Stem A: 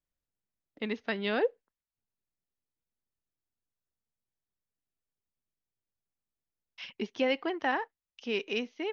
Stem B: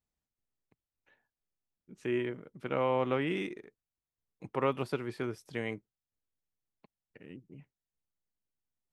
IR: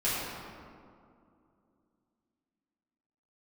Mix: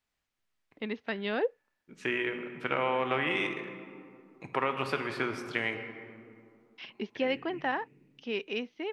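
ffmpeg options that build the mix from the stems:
-filter_complex "[0:a]lowpass=4.3k,volume=-1.5dB[a];[1:a]equalizer=f=2.1k:w=0.34:g=14,acompressor=threshold=-24dB:ratio=6,volume=-3dB,asplit=2[b][c];[c]volume=-14.5dB[d];[2:a]atrim=start_sample=2205[e];[d][e]afir=irnorm=-1:irlink=0[f];[a][b][f]amix=inputs=3:normalize=0"

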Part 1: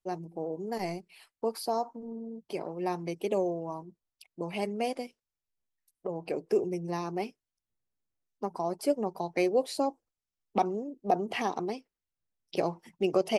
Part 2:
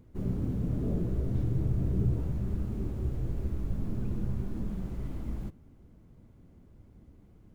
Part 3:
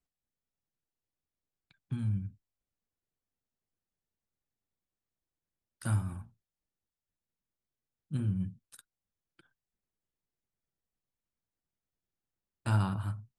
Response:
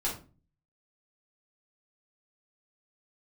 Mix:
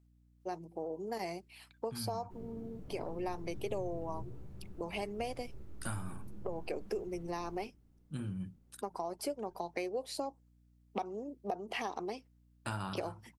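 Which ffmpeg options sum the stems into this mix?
-filter_complex "[0:a]adelay=400,volume=-0.5dB[a];[1:a]lowshelf=f=230:g=-8.5,adelay=2150,volume=-17dB,asplit=2[b][c];[c]volume=-8.5dB[d];[2:a]volume=1.5dB[e];[a][e]amix=inputs=2:normalize=0,highpass=f=350:p=1,acompressor=threshold=-34dB:ratio=6,volume=0dB[f];[3:a]atrim=start_sample=2205[g];[d][g]afir=irnorm=-1:irlink=0[h];[b][f][h]amix=inputs=3:normalize=0,aeval=exprs='val(0)+0.000562*(sin(2*PI*60*n/s)+sin(2*PI*2*60*n/s)/2+sin(2*PI*3*60*n/s)/3+sin(2*PI*4*60*n/s)/4+sin(2*PI*5*60*n/s)/5)':c=same"

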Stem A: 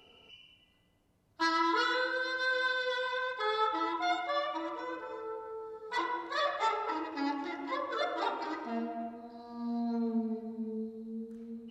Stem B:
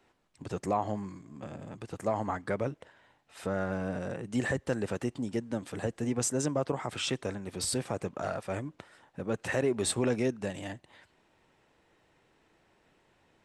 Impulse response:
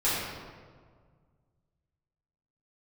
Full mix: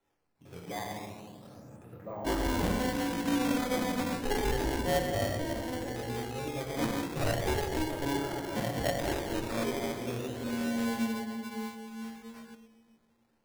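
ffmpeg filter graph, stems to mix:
-filter_complex "[0:a]dynaudnorm=f=240:g=13:m=4dB,acrusher=samples=35:mix=1:aa=0.000001,asoftclip=type=tanh:threshold=-17.5dB,adelay=850,volume=-3dB,asplit=2[a][b];[b]volume=-18.5dB[c];[1:a]lowpass=2.5k,flanger=delay=22.5:depth=5.5:speed=2,volume=-12.5dB,asplit=2[d][e];[e]volume=-6dB[f];[2:a]atrim=start_sample=2205[g];[c][f]amix=inputs=2:normalize=0[h];[h][g]afir=irnorm=-1:irlink=0[i];[a][d][i]amix=inputs=3:normalize=0,acrusher=samples=9:mix=1:aa=0.000001:lfo=1:lforange=14.4:lforate=0.33"

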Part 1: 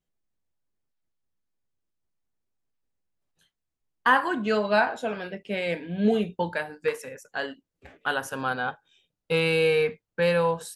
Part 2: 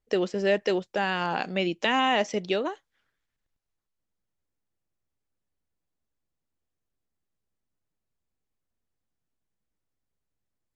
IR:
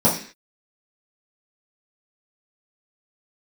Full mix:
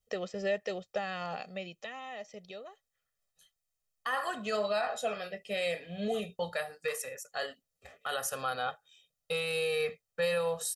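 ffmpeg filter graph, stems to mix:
-filter_complex "[0:a]bass=f=250:g=-5,treble=f=4k:g=9,alimiter=limit=-19dB:level=0:latency=1:release=28,volume=-5dB[a];[1:a]alimiter=limit=-18dB:level=0:latency=1:release=427,adynamicequalizer=threshold=0.00501:dfrequency=1300:dqfactor=1:tfrequency=1300:tqfactor=1:attack=5:release=100:ratio=0.375:range=2.5:mode=cutabove:tftype=bell,volume=-5dB,afade=t=out:st=1.36:d=0.58:silence=0.375837[b];[a][b]amix=inputs=2:normalize=0,lowshelf=f=440:g=-3,aecho=1:1:1.6:0.83"

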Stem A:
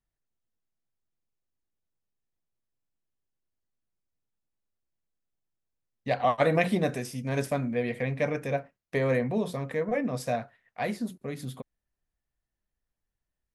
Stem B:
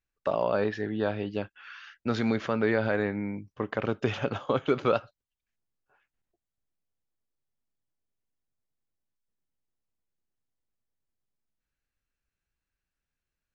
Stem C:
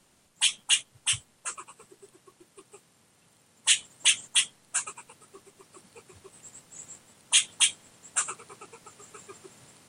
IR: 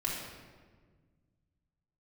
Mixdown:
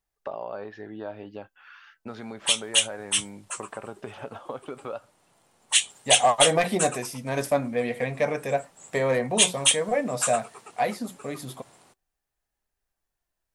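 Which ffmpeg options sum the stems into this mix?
-filter_complex "[0:a]highshelf=f=2.9k:g=9.5,asoftclip=type=hard:threshold=-17dB,volume=2dB[a];[1:a]acompressor=threshold=-32dB:ratio=3,volume=-2.5dB[b];[2:a]adynamicequalizer=threshold=0.0126:dfrequency=2100:dqfactor=0.7:tfrequency=2100:tqfactor=0.7:attack=5:release=100:ratio=0.375:range=3.5:mode=boostabove:tftype=highshelf,adelay=2050,volume=0.5dB[c];[a][b][c]amix=inputs=3:normalize=0,equalizer=f=770:w=0.86:g=9,flanger=delay=2.4:depth=3:regen=79:speed=0.16:shape=sinusoidal"

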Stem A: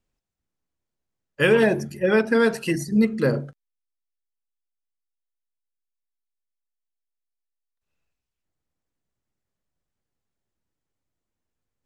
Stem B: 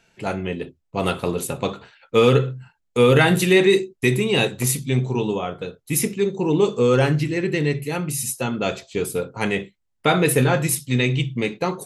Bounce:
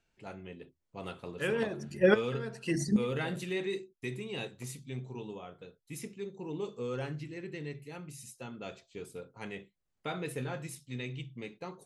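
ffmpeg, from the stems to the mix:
-filter_complex "[0:a]lowpass=f=9.4k:w=0.5412,lowpass=f=9.4k:w=1.3066,volume=-1.5dB[a];[1:a]lowpass=8.6k,volume=-19.5dB,asplit=2[b][c];[c]apad=whole_len=522865[d];[a][d]sidechaincompress=threshold=-58dB:ratio=5:attack=25:release=259[e];[e][b]amix=inputs=2:normalize=0"

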